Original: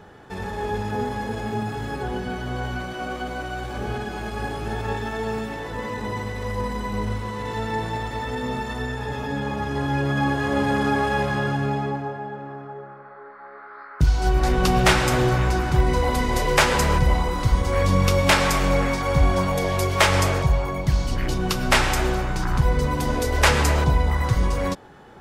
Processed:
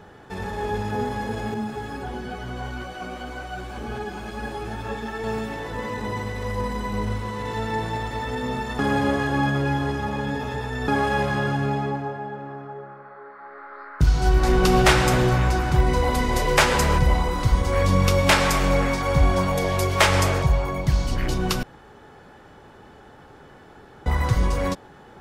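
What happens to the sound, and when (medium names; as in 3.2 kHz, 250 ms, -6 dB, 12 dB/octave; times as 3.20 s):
1.54–5.24 s: three-phase chorus
8.79–10.88 s: reverse
13.31–14.84 s: reverb throw, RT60 2.9 s, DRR 4.5 dB
21.63–24.06 s: room tone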